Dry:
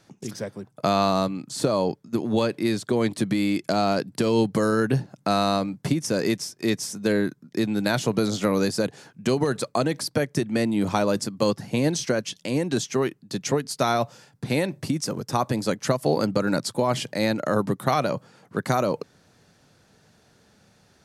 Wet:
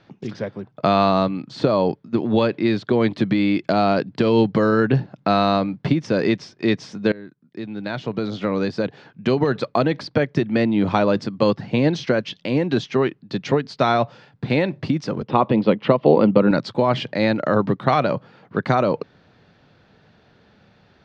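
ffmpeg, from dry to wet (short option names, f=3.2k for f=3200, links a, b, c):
-filter_complex "[0:a]asettb=1/sr,asplit=3[a][b][c];[a]atrim=end=15.224[d];[b]atrim=start=15.22:end=16.51,asetpts=PTS-STARTPTS,afade=t=in:d=0.004:c=qsin,afade=t=out:st=1.286:d=0.004:c=qsin,highpass=110,equalizer=f=210:t=q:w=4:g=6,equalizer=f=350:t=q:w=4:g=4,equalizer=f=490:t=q:w=4:g=5,equalizer=f=1k:t=q:w=4:g=4,equalizer=f=1.6k:t=q:w=4:g=-7,equalizer=f=2.9k:t=q:w=4:g=5,lowpass=f=3.7k:w=0.5412,lowpass=f=3.7k:w=1.3066[e];[c]atrim=start=16.506[f];[d][e]acrossfade=d=0.004:c1=hsin:c2=qsin[g];[g][f]acrossfade=d=0.004:c1=qsin:c2=hsin,asplit=2[h][i];[h]atrim=end=7.12,asetpts=PTS-STARTPTS,afade=t=out:st=7.116:d=0.004:c=hsin:silence=0.0749894[j];[i]atrim=start=7.12,asetpts=PTS-STARTPTS,afade=t=in:d=2.48:silence=0.0749894[k];[j][k]concat=n=2:v=0:a=1,lowpass=f=3.9k:w=0.5412,lowpass=f=3.9k:w=1.3066,volume=4.5dB"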